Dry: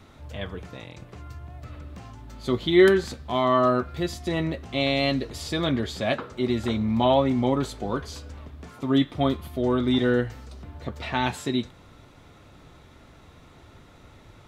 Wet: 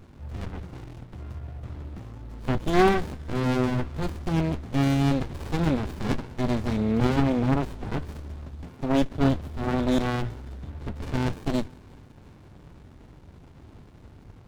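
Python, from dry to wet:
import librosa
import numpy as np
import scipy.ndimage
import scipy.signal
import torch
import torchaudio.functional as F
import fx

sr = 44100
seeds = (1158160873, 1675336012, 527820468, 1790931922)

y = fx.echo_thinned(x, sr, ms=177, feedback_pct=79, hz=810.0, wet_db=-22.0)
y = fx.running_max(y, sr, window=65)
y = y * 10.0 ** (3.5 / 20.0)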